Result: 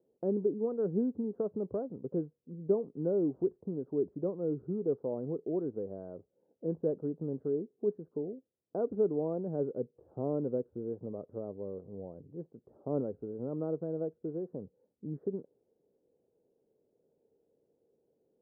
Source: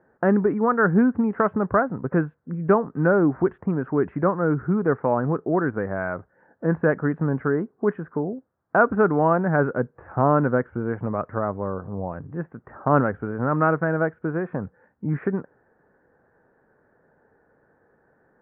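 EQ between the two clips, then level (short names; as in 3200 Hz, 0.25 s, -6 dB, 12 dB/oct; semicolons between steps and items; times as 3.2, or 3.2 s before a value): ladder low-pass 540 Hz, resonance 45%; low shelf 110 Hz -8.5 dB; -5.0 dB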